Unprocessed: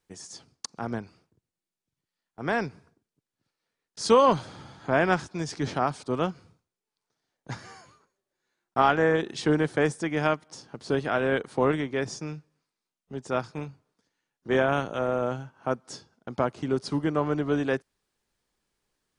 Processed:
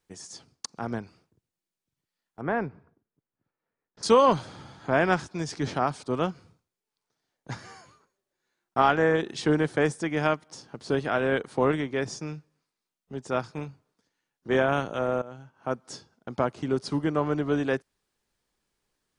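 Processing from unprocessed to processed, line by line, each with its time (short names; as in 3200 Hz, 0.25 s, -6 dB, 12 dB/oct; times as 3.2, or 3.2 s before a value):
2.41–4.03 LPF 1600 Hz
15.22–15.84 fade in, from -19 dB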